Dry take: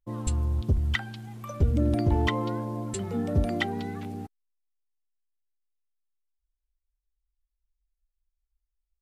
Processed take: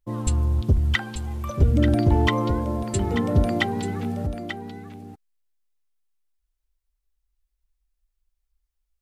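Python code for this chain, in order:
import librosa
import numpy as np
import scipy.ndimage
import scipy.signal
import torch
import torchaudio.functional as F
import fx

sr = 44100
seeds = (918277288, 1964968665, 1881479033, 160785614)

y = x + 10.0 ** (-9.0 / 20.0) * np.pad(x, (int(888 * sr / 1000.0), 0))[:len(x)]
y = y * 10.0 ** (5.0 / 20.0)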